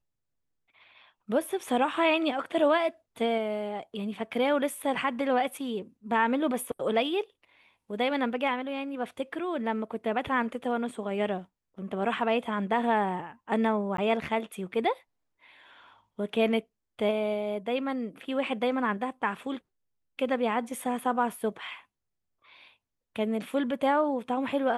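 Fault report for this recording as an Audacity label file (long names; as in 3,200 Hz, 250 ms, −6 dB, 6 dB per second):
13.970000	13.980000	drop-out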